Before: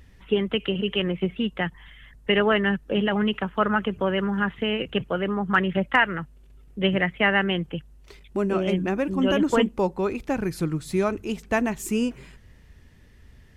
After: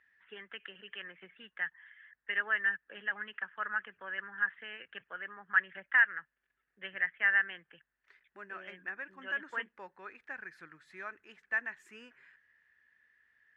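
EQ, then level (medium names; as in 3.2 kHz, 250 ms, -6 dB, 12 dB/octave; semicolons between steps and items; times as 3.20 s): band-pass filter 1.7 kHz, Q 7.2; 0.0 dB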